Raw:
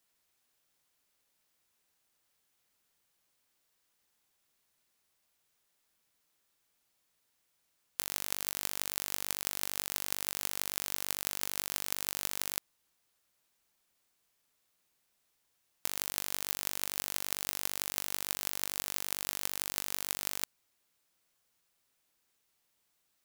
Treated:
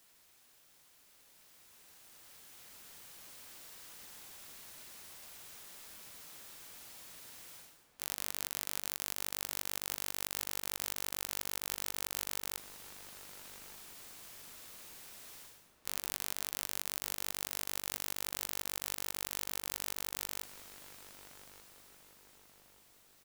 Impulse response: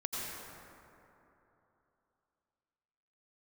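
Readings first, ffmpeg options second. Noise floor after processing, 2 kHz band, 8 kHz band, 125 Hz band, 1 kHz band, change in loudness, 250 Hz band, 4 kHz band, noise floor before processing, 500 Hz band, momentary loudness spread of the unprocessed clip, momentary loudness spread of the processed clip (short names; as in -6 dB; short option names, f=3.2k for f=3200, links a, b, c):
-65 dBFS, -2.5 dB, -3.0 dB, -2.5 dB, -2.5 dB, -5.0 dB, -2.5 dB, -3.0 dB, -77 dBFS, -2.0 dB, 2 LU, 17 LU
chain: -filter_complex "[0:a]areverse,acompressor=threshold=-53dB:ratio=12,areverse,aeval=exprs='(mod(53.1*val(0)+1,2)-1)/53.1':c=same,dynaudnorm=f=230:g=21:m=13dB,asplit=2[a][b];[b]adelay=1184,lowpass=f=1.3k:p=1,volume=-9.5dB,asplit=2[c][d];[d]adelay=1184,lowpass=f=1.3k:p=1,volume=0.48,asplit=2[e][f];[f]adelay=1184,lowpass=f=1.3k:p=1,volume=0.48,asplit=2[g][h];[h]adelay=1184,lowpass=f=1.3k:p=1,volume=0.48,asplit=2[i][j];[j]adelay=1184,lowpass=f=1.3k:p=1,volume=0.48[k];[a][c][e][g][i][k]amix=inputs=6:normalize=0,volume=12dB"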